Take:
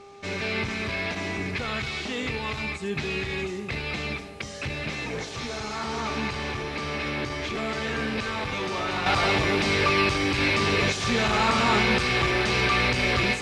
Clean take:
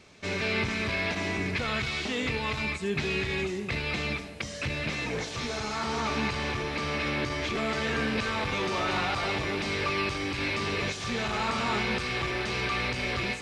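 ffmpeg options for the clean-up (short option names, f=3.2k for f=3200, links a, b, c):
-af "bandreject=f=400.1:t=h:w=4,bandreject=f=800.2:t=h:w=4,bandreject=f=1.2003k:t=h:w=4,asetnsamples=n=441:p=0,asendcmd='9.06 volume volume -7dB',volume=0dB"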